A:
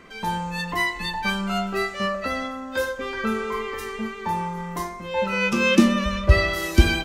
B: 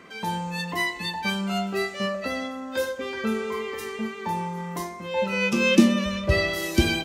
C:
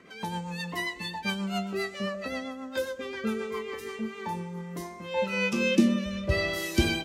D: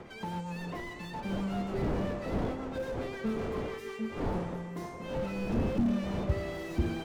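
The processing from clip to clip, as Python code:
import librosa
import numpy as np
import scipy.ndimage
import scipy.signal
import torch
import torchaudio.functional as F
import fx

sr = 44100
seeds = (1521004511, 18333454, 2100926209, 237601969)

y1 = scipy.signal.sosfilt(scipy.signal.butter(2, 110.0, 'highpass', fs=sr, output='sos'), x)
y1 = fx.dynamic_eq(y1, sr, hz=1300.0, q=1.5, threshold_db=-40.0, ratio=4.0, max_db=-7)
y2 = fx.rotary_switch(y1, sr, hz=7.5, then_hz=0.7, switch_at_s=3.48)
y2 = y2 * 10.0 ** (-2.5 / 20.0)
y3 = fx.dmg_wind(y2, sr, seeds[0], corner_hz=550.0, level_db=-34.0)
y3 = fx.slew_limit(y3, sr, full_power_hz=17.0)
y3 = y3 * 10.0 ** (-2.0 / 20.0)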